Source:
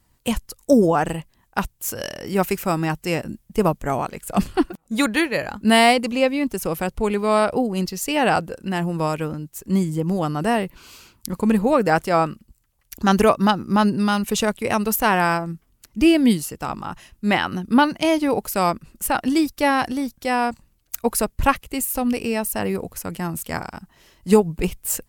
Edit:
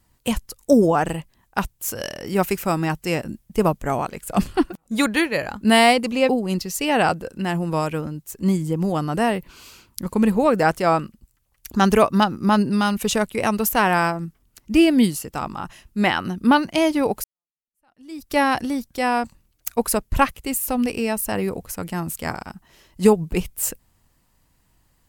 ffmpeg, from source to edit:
-filter_complex "[0:a]asplit=3[a][b][c];[a]atrim=end=6.292[d];[b]atrim=start=7.558:end=18.51,asetpts=PTS-STARTPTS,afade=t=out:st=10.948:d=0.004:c=hsin[e];[c]atrim=start=18.51,asetpts=PTS-STARTPTS,afade=t=in:d=1.07:c=exp[f];[e][f]concat=n=2:v=0:a=1[g];[d][g]acrossfade=d=0.004:c1=hsin:c2=hsin"

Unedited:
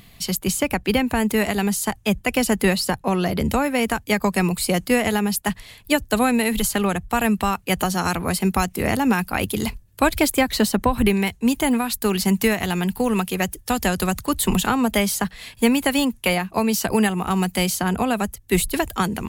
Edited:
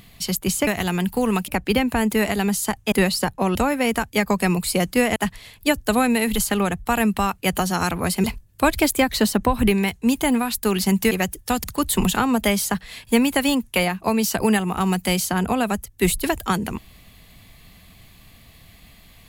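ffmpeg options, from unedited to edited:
-filter_complex "[0:a]asplit=9[a][b][c][d][e][f][g][h][i];[a]atrim=end=0.672[j];[b]atrim=start=12.498:end=13.312[k];[c]atrim=start=0.668:end=2.112[l];[d]atrim=start=2.578:end=3.212[m];[e]atrim=start=3.488:end=5.102[n];[f]atrim=start=5.398:end=8.482[o];[g]atrim=start=9.628:end=12.502[p];[h]atrim=start=13.308:end=13.842[q];[i]atrim=start=14.138[r];[j][k]acrossfade=d=0.004:c1=hsin:c2=hsin[s];[s][l]acrossfade=d=0.004:c1=hsin:c2=hsin[t];[t][m]acrossfade=d=0.004:c1=hsin:c2=hsin[u];[u][n]acrossfade=d=0.004:c1=hsin:c2=hsin[v];[v][o]acrossfade=d=0.004:c1=hsin:c2=hsin[w];[w][p]acrossfade=d=0.004:c1=hsin:c2=hsin[x];[x][q]acrossfade=d=0.004:c1=hsin:c2=hsin[y];[y][r]acrossfade=d=0.004:c1=hsin:c2=hsin"

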